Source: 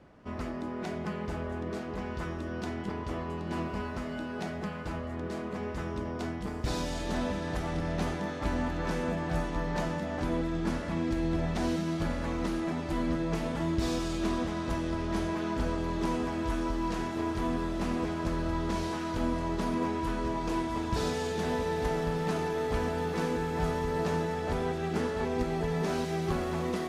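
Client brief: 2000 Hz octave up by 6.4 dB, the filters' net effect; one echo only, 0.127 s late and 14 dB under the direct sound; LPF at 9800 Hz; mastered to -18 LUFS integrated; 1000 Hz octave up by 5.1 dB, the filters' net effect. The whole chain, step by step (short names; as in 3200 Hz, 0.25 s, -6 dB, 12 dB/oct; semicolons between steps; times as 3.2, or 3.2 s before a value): LPF 9800 Hz; bell 1000 Hz +4.5 dB; bell 2000 Hz +6.5 dB; echo 0.127 s -14 dB; gain +12.5 dB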